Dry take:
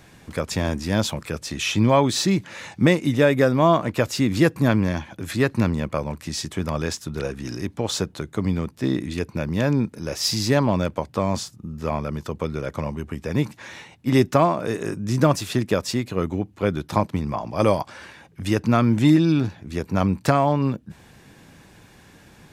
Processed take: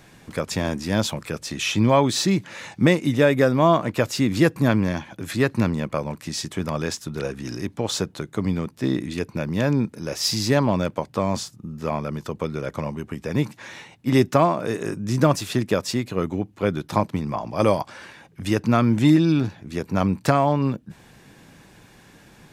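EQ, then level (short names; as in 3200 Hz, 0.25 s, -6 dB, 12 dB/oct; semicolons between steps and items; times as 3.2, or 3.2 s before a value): bell 76 Hz -9 dB 0.37 oct; 0.0 dB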